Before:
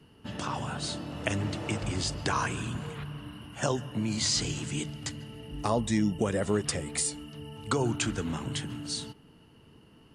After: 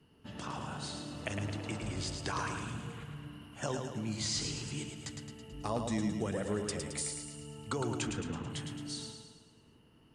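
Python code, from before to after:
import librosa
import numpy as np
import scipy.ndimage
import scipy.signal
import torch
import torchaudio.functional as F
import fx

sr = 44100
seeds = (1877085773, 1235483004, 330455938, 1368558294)

y = fx.lowpass(x, sr, hz=4000.0, slope=12, at=(8.07, 8.5))
y = fx.echo_feedback(y, sr, ms=109, feedback_pct=54, wet_db=-5.5)
y = F.gain(torch.from_numpy(y), -8.0).numpy()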